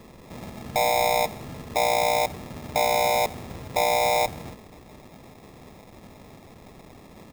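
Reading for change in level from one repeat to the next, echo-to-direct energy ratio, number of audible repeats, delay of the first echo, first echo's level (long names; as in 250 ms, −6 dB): −5.0 dB, −16.5 dB, 3, 84 ms, −18.0 dB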